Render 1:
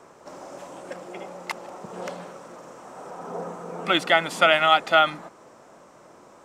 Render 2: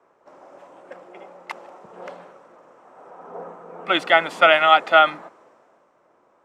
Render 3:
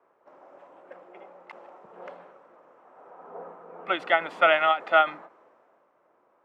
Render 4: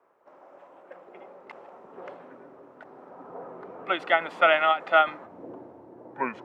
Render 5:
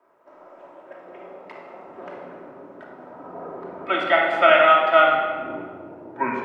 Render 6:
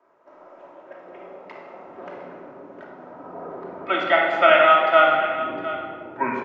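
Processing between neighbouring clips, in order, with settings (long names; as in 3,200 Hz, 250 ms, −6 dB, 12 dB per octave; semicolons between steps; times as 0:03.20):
bass and treble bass −10 dB, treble −11 dB; multiband upward and downward expander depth 40%; level +1 dB
bass and treble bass −5 dB, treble −13 dB; every ending faded ahead of time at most 250 dB per second; level −5 dB
delay with pitch and tempo change per echo 691 ms, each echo −6 semitones, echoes 2
rectangular room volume 2,000 cubic metres, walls mixed, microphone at 2.8 metres; level +1 dB
single-tap delay 708 ms −14 dB; downsampling to 16,000 Hz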